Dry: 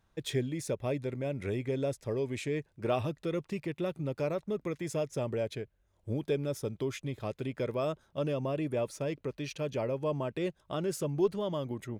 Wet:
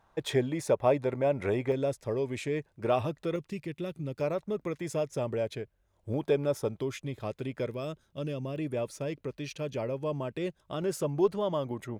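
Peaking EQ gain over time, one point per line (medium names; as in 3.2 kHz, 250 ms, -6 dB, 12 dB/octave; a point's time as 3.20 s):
peaking EQ 860 Hz 1.8 oct
+14 dB
from 1.72 s +4.5 dB
from 3.36 s -6.5 dB
from 4.21 s +3 dB
from 6.14 s +10 dB
from 6.79 s +1.5 dB
from 7.68 s -7.5 dB
from 8.56 s -1 dB
from 10.82 s +6 dB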